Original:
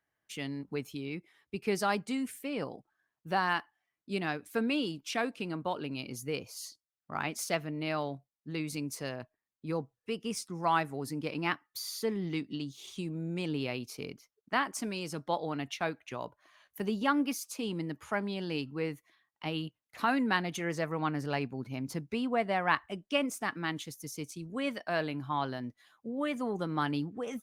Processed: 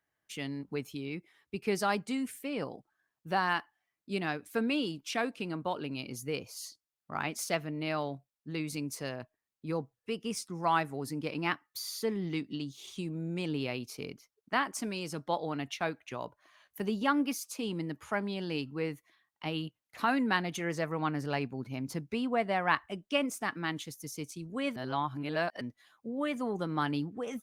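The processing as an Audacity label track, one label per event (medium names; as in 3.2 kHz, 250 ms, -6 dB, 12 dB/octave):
24.760000	25.610000	reverse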